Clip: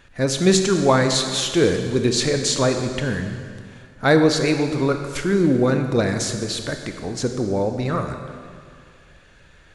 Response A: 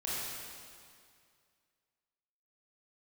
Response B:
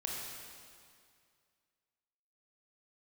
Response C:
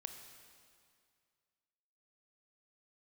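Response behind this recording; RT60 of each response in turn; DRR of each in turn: C; 2.2 s, 2.2 s, 2.2 s; -8.5 dB, -3.0 dB, 5.5 dB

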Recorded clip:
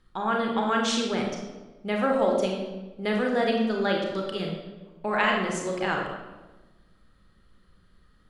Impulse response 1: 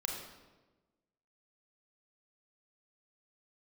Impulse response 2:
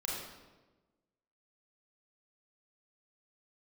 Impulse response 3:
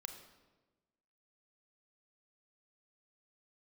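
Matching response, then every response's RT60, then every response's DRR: 1; 1.2 s, 1.2 s, 1.2 s; 0.0 dB, -5.0 dB, 5.5 dB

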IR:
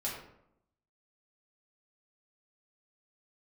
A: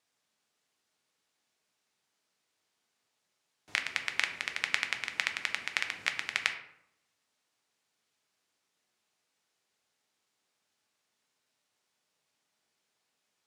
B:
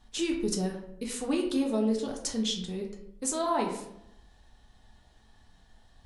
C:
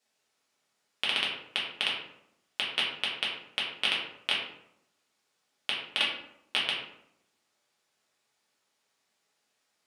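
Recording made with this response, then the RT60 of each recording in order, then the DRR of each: C; 0.75 s, 0.75 s, 0.75 s; 5.0 dB, 0.5 dB, -5.5 dB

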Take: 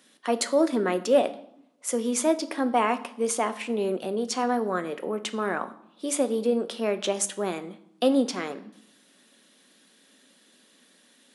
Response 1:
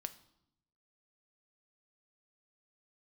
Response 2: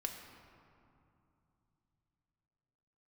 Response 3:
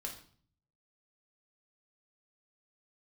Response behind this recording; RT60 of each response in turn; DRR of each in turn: 1; 0.80 s, 2.8 s, 0.50 s; 9.5 dB, 2.0 dB, 0.5 dB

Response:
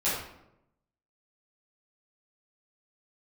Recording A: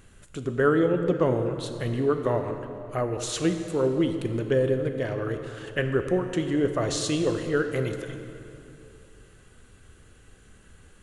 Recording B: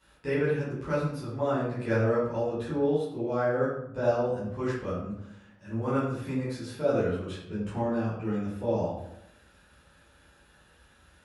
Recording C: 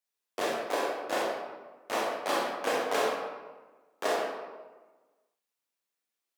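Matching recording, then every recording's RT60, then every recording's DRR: B; 2.8 s, 0.85 s, 1.3 s; 6.0 dB, -12.0 dB, -4.0 dB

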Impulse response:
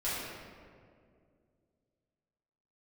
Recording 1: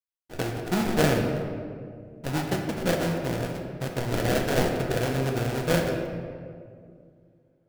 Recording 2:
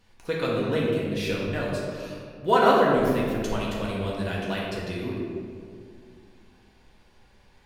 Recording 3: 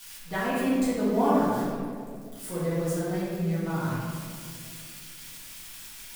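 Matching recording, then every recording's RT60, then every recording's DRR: 3; 2.2 s, 2.2 s, 2.2 s; 1.0 dB, -5.5 dB, -11.5 dB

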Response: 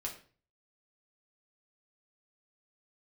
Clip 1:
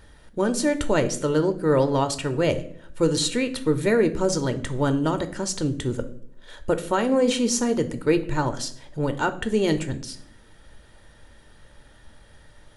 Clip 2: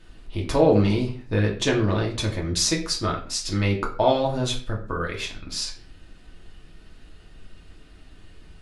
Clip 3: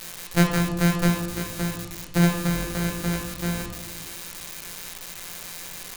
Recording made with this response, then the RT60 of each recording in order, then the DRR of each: 2; 0.60 s, 0.40 s, 1.1 s; 8.5 dB, -2.0 dB, 1.0 dB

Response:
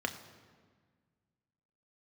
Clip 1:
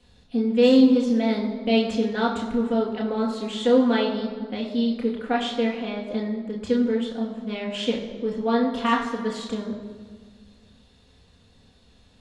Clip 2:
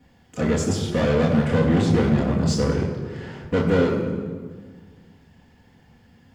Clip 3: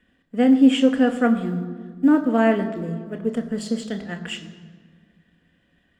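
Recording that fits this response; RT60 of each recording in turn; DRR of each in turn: 3; 1.6 s, 1.6 s, 1.6 s; -2.0 dB, -7.0 dB, 5.0 dB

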